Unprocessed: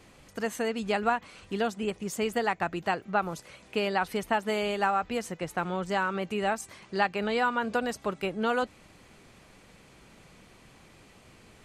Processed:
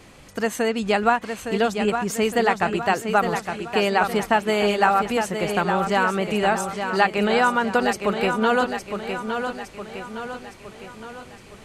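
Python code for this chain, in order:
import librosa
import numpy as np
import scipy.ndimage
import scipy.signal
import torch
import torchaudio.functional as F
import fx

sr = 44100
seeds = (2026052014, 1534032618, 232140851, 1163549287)

y = fx.echo_feedback(x, sr, ms=862, feedback_pct=50, wet_db=-7.0)
y = y * librosa.db_to_amplitude(7.5)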